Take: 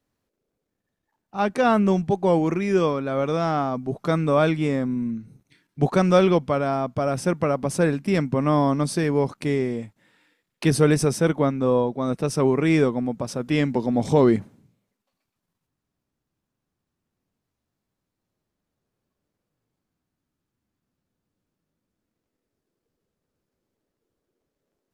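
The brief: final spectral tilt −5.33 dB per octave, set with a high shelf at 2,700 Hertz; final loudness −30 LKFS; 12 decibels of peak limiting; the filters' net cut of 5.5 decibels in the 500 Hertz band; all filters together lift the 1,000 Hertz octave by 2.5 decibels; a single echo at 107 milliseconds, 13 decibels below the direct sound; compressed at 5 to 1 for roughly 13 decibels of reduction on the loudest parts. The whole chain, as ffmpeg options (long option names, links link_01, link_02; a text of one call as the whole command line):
ffmpeg -i in.wav -af "equalizer=frequency=500:width_type=o:gain=-8.5,equalizer=frequency=1000:width_type=o:gain=5.5,highshelf=frequency=2700:gain=4,acompressor=threshold=-30dB:ratio=5,alimiter=level_in=4dB:limit=-24dB:level=0:latency=1,volume=-4dB,aecho=1:1:107:0.224,volume=7dB" out.wav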